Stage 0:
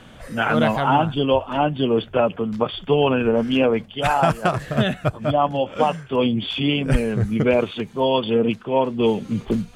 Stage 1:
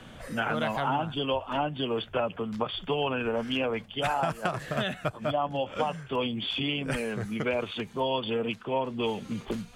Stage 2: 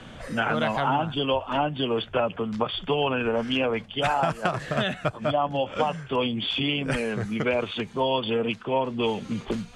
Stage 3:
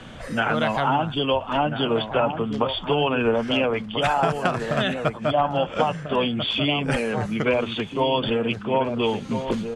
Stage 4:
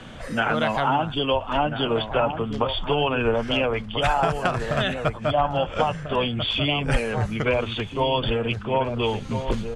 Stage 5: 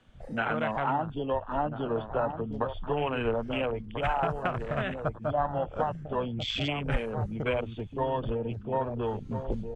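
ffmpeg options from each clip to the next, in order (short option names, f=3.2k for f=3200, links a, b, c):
-filter_complex "[0:a]acrossover=split=140|660[a][b][c];[a]acompressor=threshold=-42dB:ratio=4[d];[b]acompressor=threshold=-31dB:ratio=4[e];[c]acompressor=threshold=-26dB:ratio=4[f];[d][e][f]amix=inputs=3:normalize=0,volume=-2.5dB"
-af "lowpass=8.5k,volume=4dB"
-filter_complex "[0:a]asplit=2[a][b];[b]adelay=1341,volume=-7dB,highshelf=f=4k:g=-30.2[c];[a][c]amix=inputs=2:normalize=0,volume=2.5dB"
-af "asubboost=boost=6.5:cutoff=79"
-af "afwtdn=0.0447,volume=-6.5dB"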